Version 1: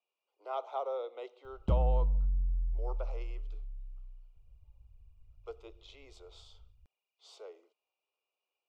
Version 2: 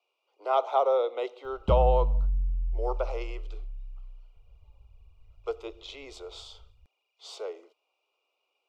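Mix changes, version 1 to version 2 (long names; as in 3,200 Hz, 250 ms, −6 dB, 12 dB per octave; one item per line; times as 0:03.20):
speech +12.0 dB
reverb: on, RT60 0.80 s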